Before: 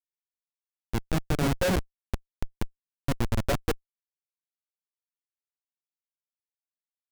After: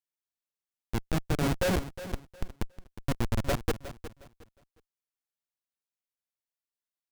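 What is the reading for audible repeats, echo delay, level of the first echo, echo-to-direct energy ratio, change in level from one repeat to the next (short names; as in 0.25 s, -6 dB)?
2, 0.361 s, -13.5 dB, -13.0 dB, -12.0 dB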